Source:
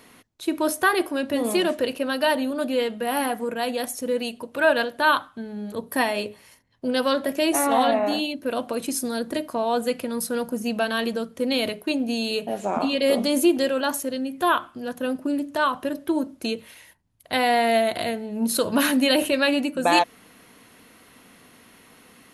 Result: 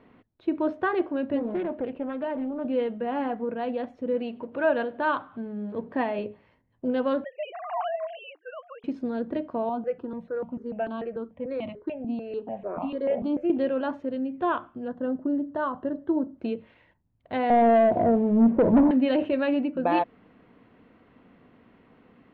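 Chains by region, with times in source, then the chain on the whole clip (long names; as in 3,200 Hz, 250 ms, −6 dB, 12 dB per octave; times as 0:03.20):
0:01.39–0:02.65: low-pass filter 2,200 Hz 6 dB per octave + downward compressor 1.5 to 1, threshold −30 dBFS + highs frequency-modulated by the lows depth 0.27 ms
0:04.14–0:06.19: mu-law and A-law mismatch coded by mu + high-pass filter 120 Hz 6 dB per octave + upward compression, threshold −37 dBFS
0:07.24–0:08.84: three sine waves on the formant tracks + high-pass filter 800 Hz 24 dB per octave
0:09.69–0:13.50: high-shelf EQ 5,800 Hz −9.5 dB + step-sequenced phaser 6.8 Hz 510–1,600 Hz
0:14.88–0:16.38: Butterworth band-reject 2,400 Hz, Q 3.7 + parametric band 3,200 Hz −5.5 dB 1.3 octaves
0:17.50–0:18.91: Chebyshev low-pass filter 990 Hz, order 6 + leveller curve on the samples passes 3
whole clip: low-pass filter 3,200 Hz 24 dB per octave; tilt shelving filter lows +7.5 dB, about 1,300 Hz; level −8 dB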